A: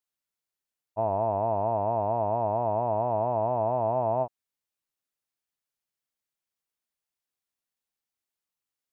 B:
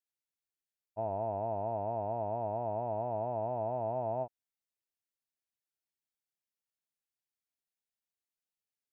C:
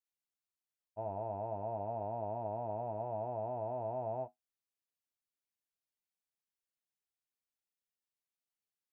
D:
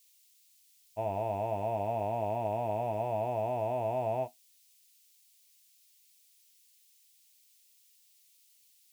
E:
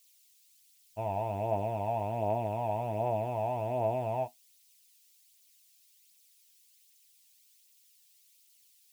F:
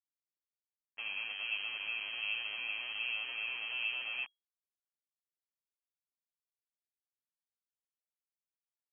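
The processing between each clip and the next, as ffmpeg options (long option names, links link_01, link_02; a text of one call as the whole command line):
ffmpeg -i in.wav -af "equalizer=frequency=1100:width_type=o:width=0.24:gain=-14,volume=-7.5dB" out.wav
ffmpeg -i in.wav -af "flanger=delay=9.5:depth=1.6:regen=-58:speed=0.41:shape=sinusoidal" out.wav
ffmpeg -i in.wav -af "aexciter=amount=6.3:drive=8.2:freq=2100,volume=6.5dB" out.wav
ffmpeg -i in.wav -af "aphaser=in_gain=1:out_gain=1:delay=1.3:decay=0.35:speed=1.3:type=triangular" out.wav
ffmpeg -i in.wav -af "aeval=exprs='val(0)*gte(abs(val(0)),0.0178)':channel_layout=same,lowpass=frequency=2800:width_type=q:width=0.5098,lowpass=frequency=2800:width_type=q:width=0.6013,lowpass=frequency=2800:width_type=q:width=0.9,lowpass=frequency=2800:width_type=q:width=2.563,afreqshift=-3300,volume=-6.5dB" out.wav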